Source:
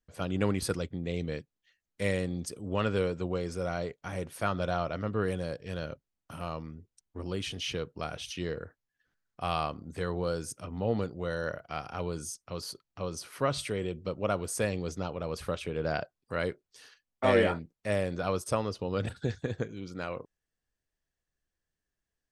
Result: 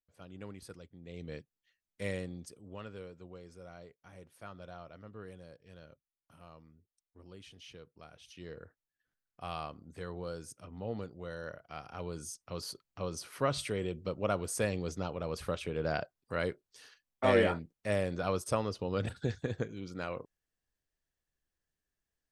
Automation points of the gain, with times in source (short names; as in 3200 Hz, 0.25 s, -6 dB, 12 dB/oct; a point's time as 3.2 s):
0.95 s -18 dB
1.35 s -7 dB
2.17 s -7 dB
2.92 s -17.5 dB
8.18 s -17.5 dB
8.63 s -9 dB
11.63 s -9 dB
12.62 s -2 dB